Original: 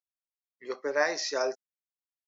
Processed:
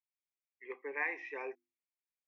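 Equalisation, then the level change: ladder low-pass 2600 Hz, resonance 65%; notches 50/100/150/200/250/300/350 Hz; fixed phaser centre 920 Hz, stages 8; +2.0 dB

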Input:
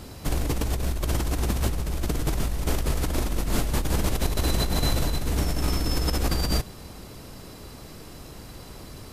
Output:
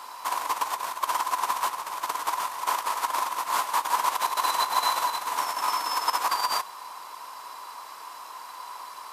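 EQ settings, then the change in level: resonant high-pass 1000 Hz, resonance Q 10; 0.0 dB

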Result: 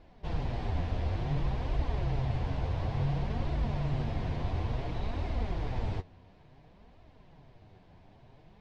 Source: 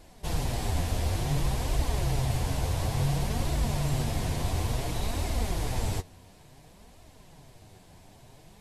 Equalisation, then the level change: LPF 10000 Hz 24 dB/oct; air absorption 280 m; -3.0 dB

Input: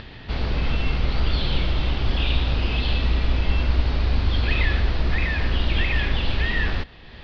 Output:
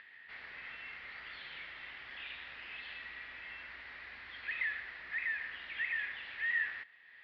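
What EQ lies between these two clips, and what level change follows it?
band-pass 1900 Hz, Q 5.6; -4.0 dB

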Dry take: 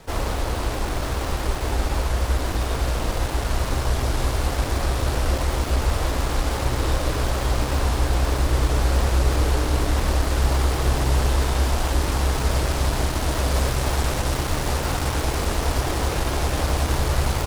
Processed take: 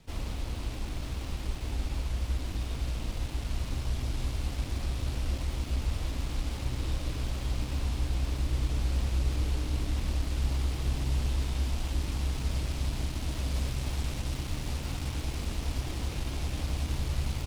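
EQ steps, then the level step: band shelf 820 Hz -9.5 dB 2.6 oct; high shelf 5700 Hz -7.5 dB; -8.5 dB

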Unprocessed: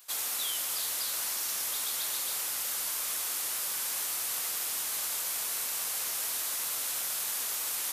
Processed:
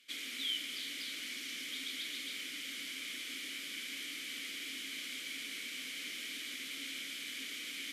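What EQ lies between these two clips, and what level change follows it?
vowel filter i; +12.0 dB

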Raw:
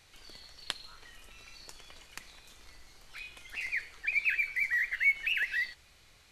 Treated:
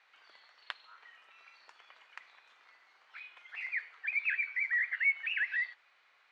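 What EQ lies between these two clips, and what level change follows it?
HPF 1200 Hz 12 dB/oct; LPF 1600 Hz 12 dB/oct; +4.5 dB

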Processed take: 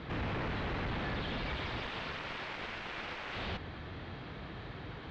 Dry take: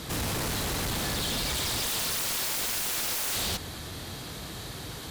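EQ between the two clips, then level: ladder low-pass 3300 Hz, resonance 20%; air absorption 72 m; +1.0 dB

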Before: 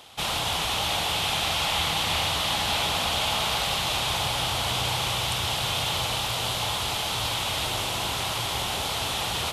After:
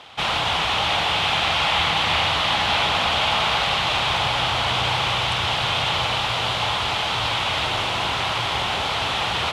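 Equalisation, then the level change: LPF 2000 Hz 12 dB/oct; tilt +4 dB/oct; low shelf 190 Hz +12 dB; +7.0 dB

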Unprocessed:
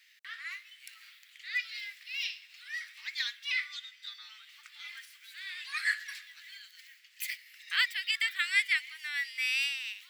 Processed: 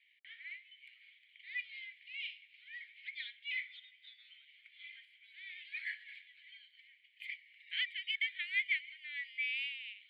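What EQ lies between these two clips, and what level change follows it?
vowel filter i; high shelf 8600 Hz -10.5 dB; fixed phaser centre 2500 Hz, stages 4; +5.5 dB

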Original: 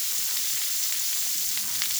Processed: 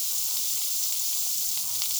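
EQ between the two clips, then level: fixed phaser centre 720 Hz, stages 4; 0.0 dB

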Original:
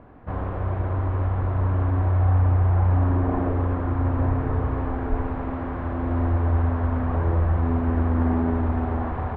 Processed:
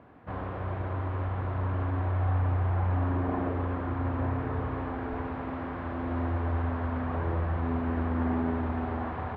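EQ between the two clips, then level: HPF 87 Hz; air absorption 69 m; high shelf 2200 Hz +11 dB; -5.5 dB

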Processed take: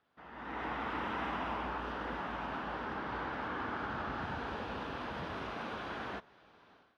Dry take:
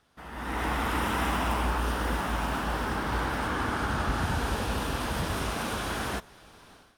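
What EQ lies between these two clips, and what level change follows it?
HPF 260 Hz 6 dB/oct; air absorption 260 m; notch 5300 Hz, Q 29; -6.0 dB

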